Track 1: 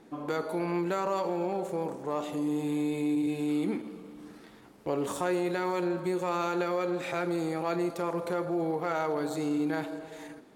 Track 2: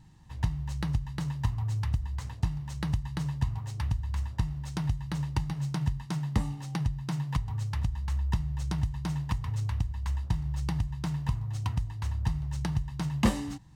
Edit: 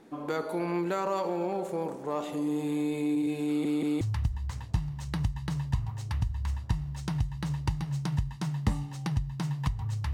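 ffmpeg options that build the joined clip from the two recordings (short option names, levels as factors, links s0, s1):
-filter_complex "[0:a]apad=whole_dur=10.13,atrim=end=10.13,asplit=3[s0][s1][s2];[s0]atrim=end=3.652[s3];[s1]atrim=start=3.468:end=3.652[s4];[s2]atrim=start=3.468:end=3.652[s5];[1:a]atrim=start=1.698:end=7.82[s6];[s3][s4]acrossfade=d=0.004:c1=hsin:c2=hsin[s7];[s7][s5]acrossfade=d=0.004:c1=hsin:c2=hsin[s8];[s8][s6]acrossfade=d=0.004:c1=hsin:c2=hsin"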